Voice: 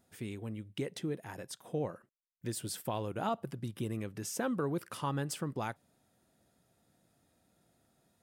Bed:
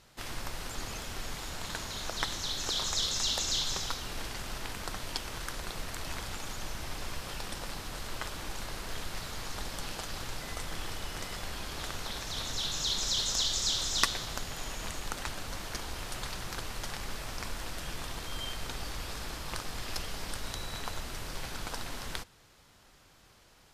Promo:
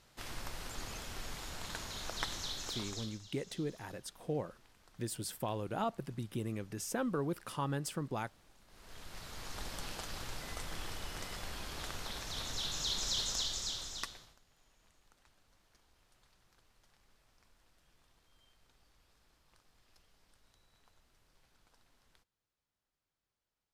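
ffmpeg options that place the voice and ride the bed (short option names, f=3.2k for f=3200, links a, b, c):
-filter_complex "[0:a]adelay=2550,volume=-1.5dB[a];[1:a]volume=17dB,afade=t=out:st=2.4:d=0.8:silence=0.0841395,afade=t=in:st=8.67:d=1:silence=0.0794328,afade=t=out:st=13.19:d=1.18:silence=0.0446684[b];[a][b]amix=inputs=2:normalize=0"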